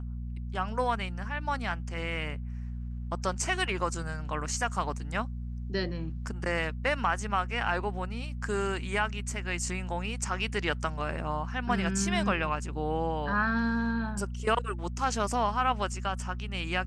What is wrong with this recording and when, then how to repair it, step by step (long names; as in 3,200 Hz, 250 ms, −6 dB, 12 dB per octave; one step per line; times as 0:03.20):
mains hum 60 Hz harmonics 4 −36 dBFS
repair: hum removal 60 Hz, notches 4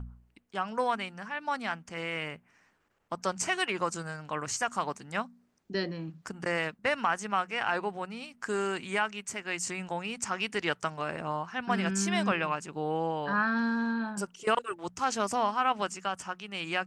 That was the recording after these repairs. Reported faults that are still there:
none of them is left